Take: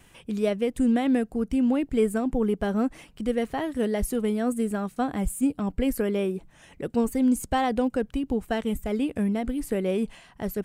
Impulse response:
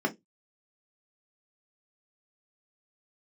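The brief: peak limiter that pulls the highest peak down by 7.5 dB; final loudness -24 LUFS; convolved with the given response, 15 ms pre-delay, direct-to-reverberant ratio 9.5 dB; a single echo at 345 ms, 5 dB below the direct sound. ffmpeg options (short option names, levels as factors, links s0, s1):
-filter_complex "[0:a]alimiter=limit=0.106:level=0:latency=1,aecho=1:1:345:0.562,asplit=2[s0][s1];[1:a]atrim=start_sample=2205,adelay=15[s2];[s1][s2]afir=irnorm=-1:irlink=0,volume=0.112[s3];[s0][s3]amix=inputs=2:normalize=0,volume=1.33"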